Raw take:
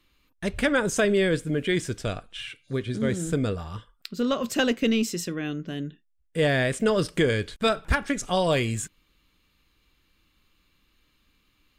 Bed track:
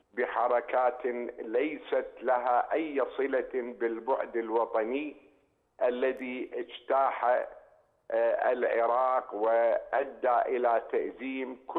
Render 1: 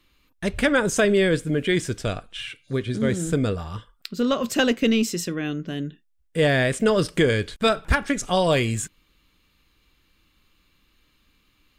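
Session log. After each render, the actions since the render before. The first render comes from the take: trim +3 dB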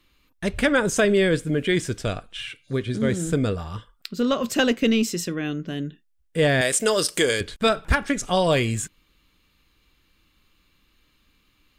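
6.61–7.41 s: tone controls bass -13 dB, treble +13 dB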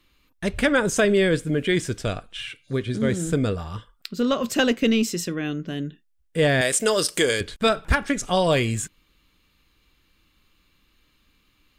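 no audible change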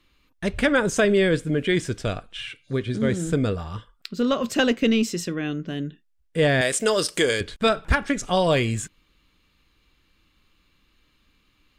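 treble shelf 9.9 kHz -9 dB

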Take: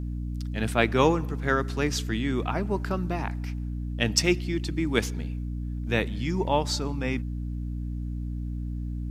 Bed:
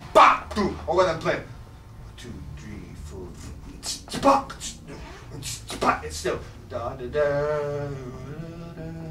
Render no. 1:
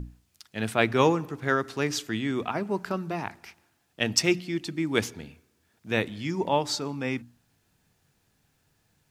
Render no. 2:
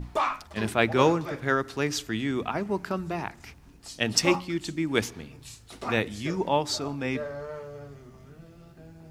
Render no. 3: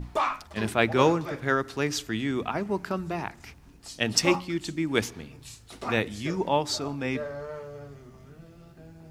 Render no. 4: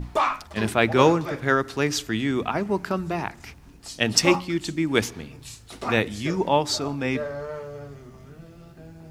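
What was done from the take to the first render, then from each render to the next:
hum notches 60/120/180/240/300 Hz
add bed -12.5 dB
no audible change
trim +4 dB; peak limiter -3 dBFS, peak gain reduction 2 dB

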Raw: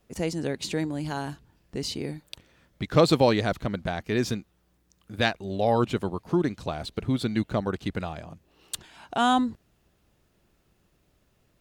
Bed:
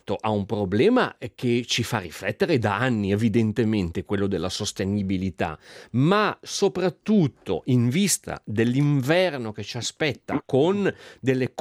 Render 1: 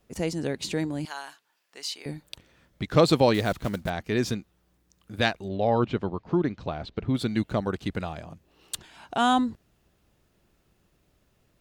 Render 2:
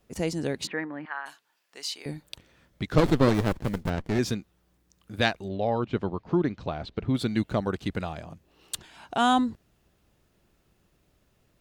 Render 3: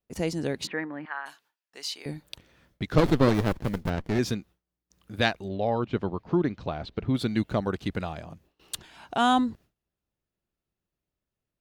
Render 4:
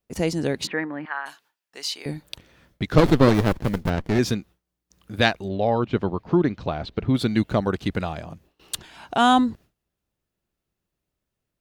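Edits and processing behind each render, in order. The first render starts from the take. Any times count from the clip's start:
1.05–2.06 s: high-pass 1 kHz; 3.34–3.91 s: block-companded coder 5-bit; 5.48–7.15 s: distance through air 180 m
0.67–1.26 s: cabinet simulation 320–2200 Hz, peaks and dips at 380 Hz -8 dB, 630 Hz -4 dB, 1.2 kHz +6 dB, 1.8 kHz +9 dB; 2.98–4.19 s: sliding maximum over 33 samples; 5.41–5.93 s: fade out, to -7 dB
gate with hold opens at -51 dBFS; peaking EQ 7.9 kHz -3 dB 0.49 oct
trim +5 dB

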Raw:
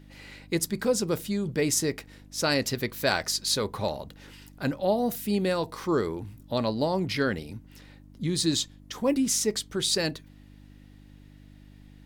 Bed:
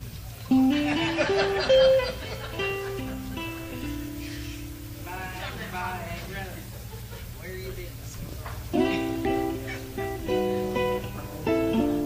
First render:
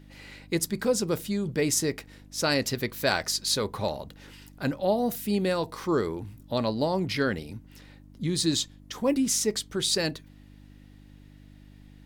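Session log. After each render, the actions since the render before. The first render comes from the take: no audible change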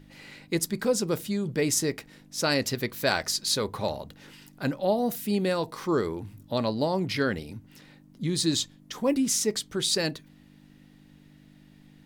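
de-hum 50 Hz, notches 2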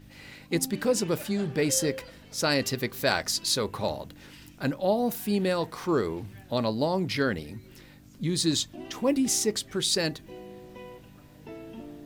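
add bed -18.5 dB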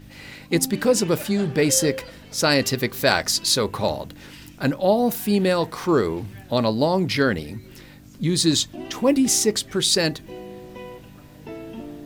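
trim +6.5 dB

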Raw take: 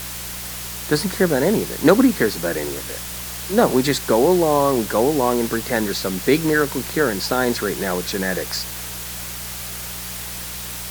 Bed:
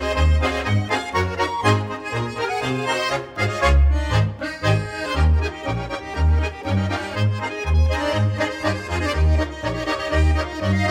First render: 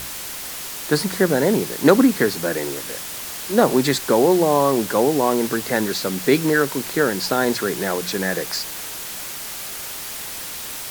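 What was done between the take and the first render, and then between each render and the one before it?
de-hum 60 Hz, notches 3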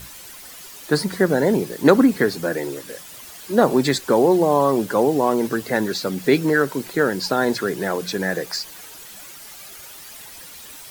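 noise reduction 11 dB, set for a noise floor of -32 dBFS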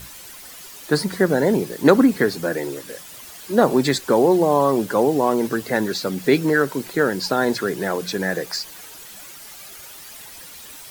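no audible change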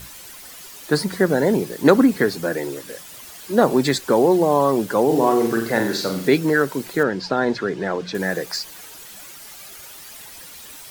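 5.05–6.28 s: flutter echo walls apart 7.5 m, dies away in 0.5 s; 7.03–8.15 s: distance through air 130 m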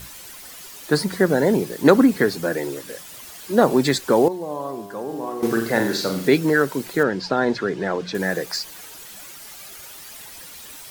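4.28–5.43 s: feedback comb 100 Hz, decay 1.7 s, mix 80%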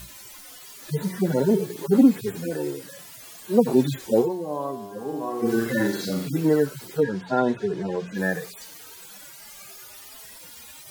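harmonic-percussive separation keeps harmonic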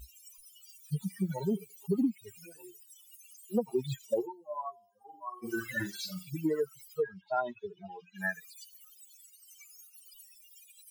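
expander on every frequency bin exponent 3; compression 4:1, threshold -27 dBFS, peak gain reduction 12.5 dB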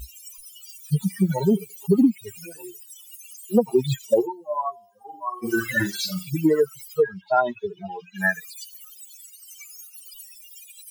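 trim +11.5 dB

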